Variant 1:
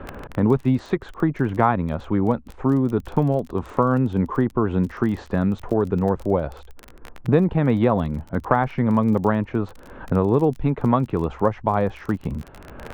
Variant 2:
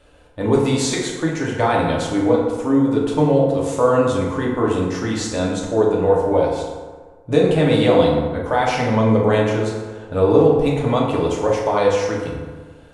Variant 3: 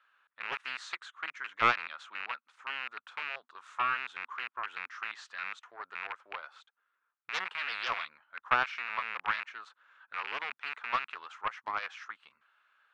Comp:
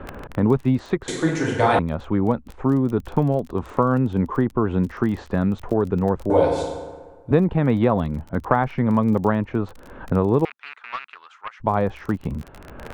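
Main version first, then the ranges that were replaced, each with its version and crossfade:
1
0:01.08–0:01.79: punch in from 2
0:06.30–0:07.31: punch in from 2
0:10.45–0:11.60: punch in from 3

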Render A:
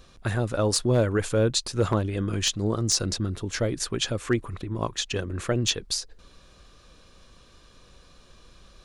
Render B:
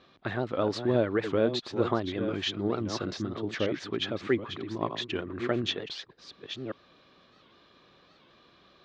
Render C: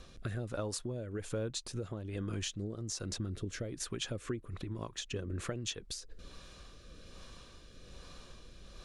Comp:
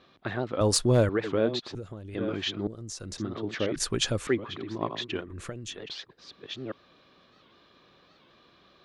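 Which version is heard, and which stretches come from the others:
B
0:00.61–0:01.09: punch in from A
0:01.75–0:02.15: punch in from C
0:02.67–0:03.18: punch in from C
0:03.76–0:04.27: punch in from A
0:05.28–0:05.77: punch in from C, crossfade 0.24 s

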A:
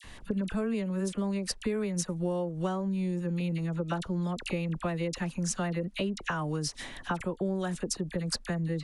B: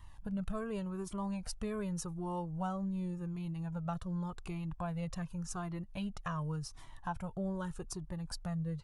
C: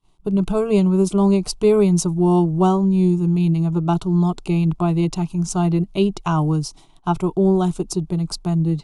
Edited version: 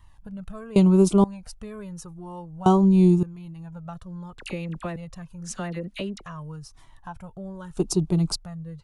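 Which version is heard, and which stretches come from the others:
B
0:00.76–0:01.24: punch in from C
0:02.66–0:03.23: punch in from C
0:04.39–0:04.96: punch in from A
0:05.47–0:06.23: punch in from A, crossfade 0.16 s
0:07.77–0:08.36: punch in from C

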